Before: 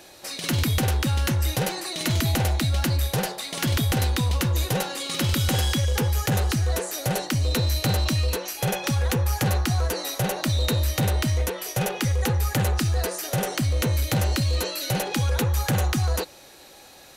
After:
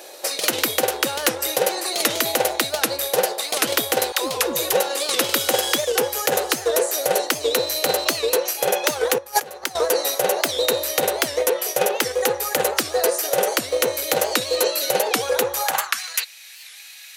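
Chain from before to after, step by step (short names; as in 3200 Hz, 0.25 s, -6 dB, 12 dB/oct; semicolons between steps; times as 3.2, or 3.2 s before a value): high shelf 7200 Hz +6.5 dB; 9.18–9.76 negative-ratio compressor -29 dBFS, ratio -0.5; high-pass sweep 480 Hz -> 2200 Hz, 15.55–16.05; transient shaper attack +5 dB, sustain -2 dB; 4.12–4.73 dispersion lows, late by 0.142 s, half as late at 300 Hz; maximiser +9.5 dB; record warp 78 rpm, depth 160 cents; gain -5.5 dB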